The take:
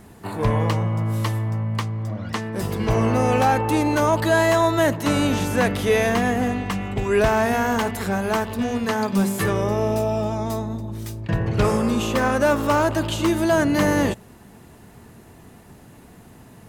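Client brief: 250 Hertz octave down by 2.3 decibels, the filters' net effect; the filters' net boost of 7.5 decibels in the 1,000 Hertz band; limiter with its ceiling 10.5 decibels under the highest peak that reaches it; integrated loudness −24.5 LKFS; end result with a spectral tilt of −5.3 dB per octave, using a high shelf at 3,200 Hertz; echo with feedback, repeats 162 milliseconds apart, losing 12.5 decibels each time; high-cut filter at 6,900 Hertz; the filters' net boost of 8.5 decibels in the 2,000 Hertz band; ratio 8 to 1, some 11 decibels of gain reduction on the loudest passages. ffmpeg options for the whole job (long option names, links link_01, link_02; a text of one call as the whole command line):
ffmpeg -i in.wav -af "lowpass=6900,equalizer=frequency=250:width_type=o:gain=-3.5,equalizer=frequency=1000:width_type=o:gain=7.5,equalizer=frequency=2000:width_type=o:gain=6.5,highshelf=frequency=3200:gain=5.5,acompressor=threshold=-20dB:ratio=8,alimiter=limit=-17.5dB:level=0:latency=1,aecho=1:1:162|324|486:0.237|0.0569|0.0137,volume=2dB" out.wav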